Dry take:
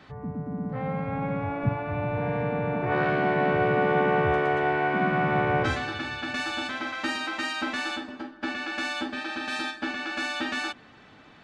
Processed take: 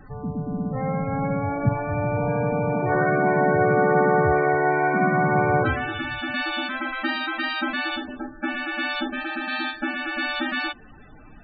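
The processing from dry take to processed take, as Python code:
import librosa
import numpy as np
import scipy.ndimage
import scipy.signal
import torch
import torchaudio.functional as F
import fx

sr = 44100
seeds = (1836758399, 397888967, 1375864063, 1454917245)

y = fx.dmg_noise_colour(x, sr, seeds[0], colour='brown', level_db=-52.0)
y = fx.spec_topn(y, sr, count=32)
y = y * librosa.db_to_amplitude(4.5)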